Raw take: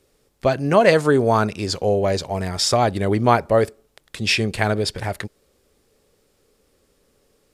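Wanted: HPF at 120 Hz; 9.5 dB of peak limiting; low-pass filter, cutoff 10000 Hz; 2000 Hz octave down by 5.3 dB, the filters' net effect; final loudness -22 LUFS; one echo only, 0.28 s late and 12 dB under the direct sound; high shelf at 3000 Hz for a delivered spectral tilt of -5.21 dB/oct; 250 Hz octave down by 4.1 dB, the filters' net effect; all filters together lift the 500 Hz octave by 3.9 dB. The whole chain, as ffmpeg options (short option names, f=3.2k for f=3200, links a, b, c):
-af "highpass=120,lowpass=10k,equalizer=f=250:t=o:g=-7.5,equalizer=f=500:t=o:g=7,equalizer=f=2k:t=o:g=-5,highshelf=f=3k:g=-6,alimiter=limit=-9.5dB:level=0:latency=1,aecho=1:1:280:0.251,volume=-1dB"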